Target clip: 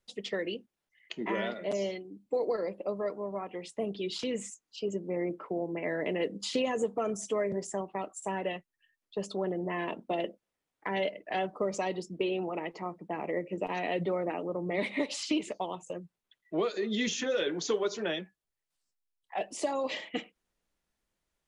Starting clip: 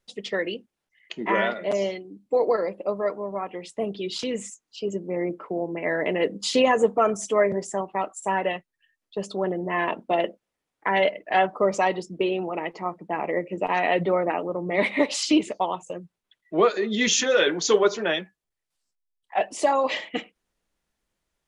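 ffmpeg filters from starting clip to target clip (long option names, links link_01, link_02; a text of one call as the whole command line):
ffmpeg -i in.wav -filter_complex "[0:a]acrossover=split=520|2900[link_01][link_02][link_03];[link_01]acompressor=threshold=-25dB:ratio=4[link_04];[link_02]acompressor=threshold=-34dB:ratio=4[link_05];[link_03]acompressor=threshold=-34dB:ratio=4[link_06];[link_04][link_05][link_06]amix=inputs=3:normalize=0,volume=-4dB" out.wav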